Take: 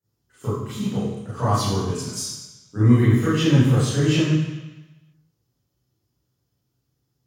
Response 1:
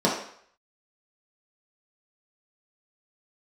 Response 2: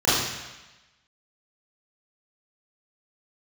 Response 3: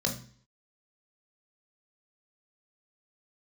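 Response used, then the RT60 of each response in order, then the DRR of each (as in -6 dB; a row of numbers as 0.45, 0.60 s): 2; 0.60, 1.1, 0.45 s; -5.5, -11.5, 0.5 dB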